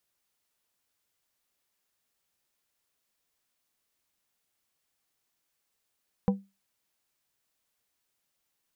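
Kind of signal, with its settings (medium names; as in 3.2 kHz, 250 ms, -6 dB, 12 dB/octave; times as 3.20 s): glass hit plate, lowest mode 196 Hz, modes 4, decay 0.25 s, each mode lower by 6 dB, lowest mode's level -17.5 dB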